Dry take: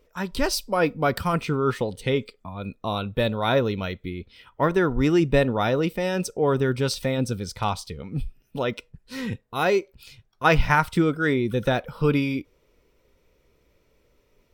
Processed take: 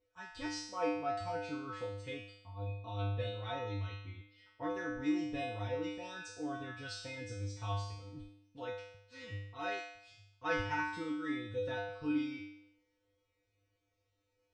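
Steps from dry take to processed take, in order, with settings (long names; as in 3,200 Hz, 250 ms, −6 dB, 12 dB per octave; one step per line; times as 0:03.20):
Butterworth low-pass 8,000 Hz 48 dB per octave
tuned comb filter 100 Hz, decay 0.75 s, harmonics odd, mix 100%
level +2 dB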